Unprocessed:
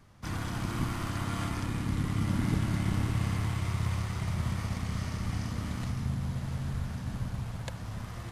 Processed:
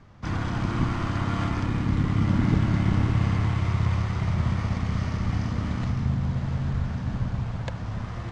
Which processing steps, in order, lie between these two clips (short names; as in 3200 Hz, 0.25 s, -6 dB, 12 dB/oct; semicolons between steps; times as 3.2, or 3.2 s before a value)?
LPF 7100 Hz 24 dB/oct; high shelf 3700 Hz -10 dB; gain +7 dB